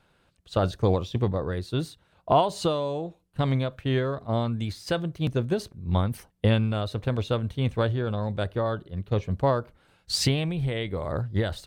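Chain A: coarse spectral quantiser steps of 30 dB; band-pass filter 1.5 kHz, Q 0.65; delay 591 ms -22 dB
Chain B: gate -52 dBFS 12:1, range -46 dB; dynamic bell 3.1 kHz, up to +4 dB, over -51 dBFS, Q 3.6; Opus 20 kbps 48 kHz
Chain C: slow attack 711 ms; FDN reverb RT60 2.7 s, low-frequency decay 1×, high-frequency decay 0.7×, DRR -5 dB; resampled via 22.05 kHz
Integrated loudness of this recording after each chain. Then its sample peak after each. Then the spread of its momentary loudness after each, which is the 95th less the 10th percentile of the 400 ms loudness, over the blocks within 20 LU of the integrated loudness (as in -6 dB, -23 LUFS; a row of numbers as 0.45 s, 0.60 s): -34.5 LUFS, -27.5 LUFS, -32.0 LUFS; -12.0 dBFS, -9.0 dBFS, -12.5 dBFS; 10 LU, 7 LU, 13 LU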